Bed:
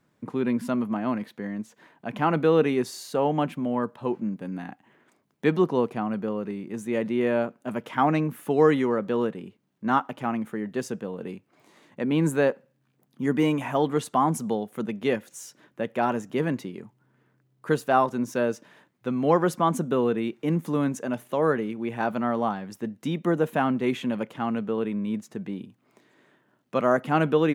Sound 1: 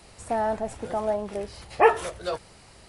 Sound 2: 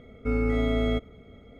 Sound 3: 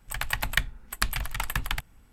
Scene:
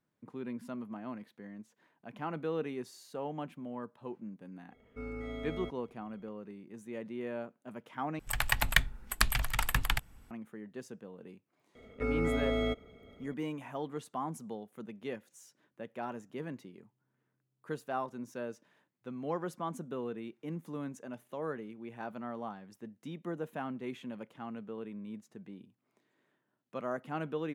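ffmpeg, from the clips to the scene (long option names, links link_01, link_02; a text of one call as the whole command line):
ffmpeg -i bed.wav -i cue0.wav -i cue1.wav -i cue2.wav -filter_complex "[2:a]asplit=2[link_01][link_02];[0:a]volume=-15dB[link_03];[link_01]lowshelf=frequency=230:gain=-6[link_04];[link_02]bass=frequency=250:gain=-7,treble=frequency=4000:gain=1[link_05];[link_03]asplit=2[link_06][link_07];[link_06]atrim=end=8.194[link_08];[3:a]atrim=end=2.12,asetpts=PTS-STARTPTS,volume=-0.5dB[link_09];[link_07]atrim=start=10.306[link_10];[link_04]atrim=end=1.59,asetpts=PTS-STARTPTS,volume=-13dB,afade=type=in:duration=0.004:curve=hsin,afade=type=out:start_time=1.586:duration=0.004:curve=hsin,adelay=4710[link_11];[link_05]atrim=end=1.59,asetpts=PTS-STARTPTS,volume=-3dB,afade=type=in:duration=0.004:curve=hsin,afade=type=out:start_time=1.586:duration=0.004:curve=hsin,adelay=11750[link_12];[link_08][link_09]acrossfade=duration=0.004:curve1=hsin:curve2=hsin[link_13];[link_13][link_10]acrossfade=duration=0.004:curve1=hsin:curve2=hsin[link_14];[link_14][link_11][link_12]amix=inputs=3:normalize=0" out.wav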